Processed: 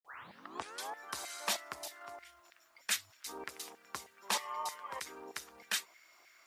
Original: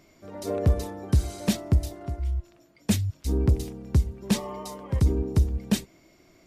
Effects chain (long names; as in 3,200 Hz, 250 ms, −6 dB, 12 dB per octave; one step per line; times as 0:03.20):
turntable start at the beginning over 0.94 s
auto-filter high-pass saw down 3.2 Hz 860–1,900 Hz
bit-depth reduction 12 bits, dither none
level −2 dB